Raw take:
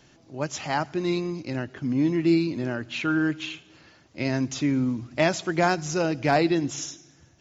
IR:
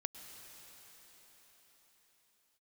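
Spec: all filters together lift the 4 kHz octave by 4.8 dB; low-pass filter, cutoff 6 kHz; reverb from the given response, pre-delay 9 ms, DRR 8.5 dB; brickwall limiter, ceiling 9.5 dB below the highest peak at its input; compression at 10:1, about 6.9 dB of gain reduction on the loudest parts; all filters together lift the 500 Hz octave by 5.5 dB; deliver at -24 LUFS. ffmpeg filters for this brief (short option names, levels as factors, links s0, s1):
-filter_complex "[0:a]lowpass=6000,equalizer=f=500:t=o:g=8,equalizer=f=4000:t=o:g=7,acompressor=threshold=0.112:ratio=10,alimiter=limit=0.141:level=0:latency=1,asplit=2[s0][s1];[1:a]atrim=start_sample=2205,adelay=9[s2];[s1][s2]afir=irnorm=-1:irlink=0,volume=0.447[s3];[s0][s3]amix=inputs=2:normalize=0,volume=1.41"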